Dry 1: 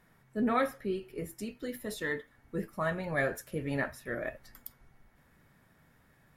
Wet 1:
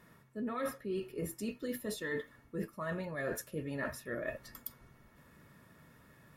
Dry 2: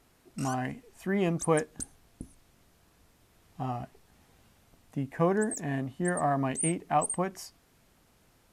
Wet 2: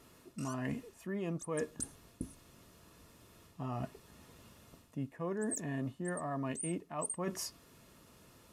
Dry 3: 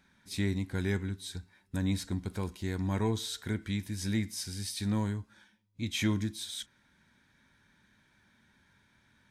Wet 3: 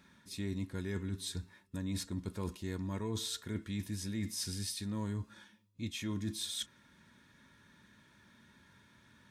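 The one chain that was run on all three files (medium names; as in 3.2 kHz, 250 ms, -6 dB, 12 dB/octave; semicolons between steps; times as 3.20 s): band-stop 2 kHz, Q 12; reverse; compression 12:1, threshold -39 dBFS; reverse; comb of notches 780 Hz; trim +5.5 dB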